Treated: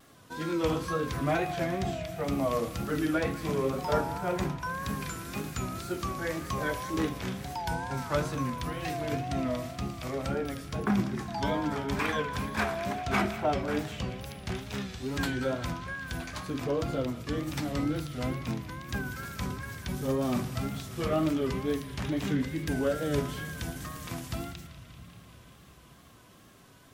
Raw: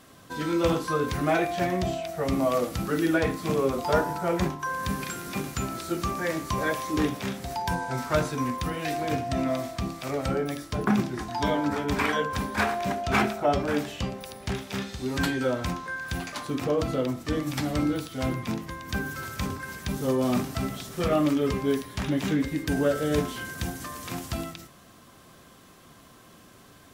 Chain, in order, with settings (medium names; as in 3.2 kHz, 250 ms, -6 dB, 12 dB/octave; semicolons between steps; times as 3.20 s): on a send at -20.5 dB: resonant low shelf 220 Hz +13.5 dB, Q 1.5 + reverberation RT60 3.3 s, pre-delay 7 ms; on the sum: wow and flutter 85 cents; band-passed feedback delay 194 ms, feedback 83%, band-pass 2.8 kHz, level -13 dB; trim -4.5 dB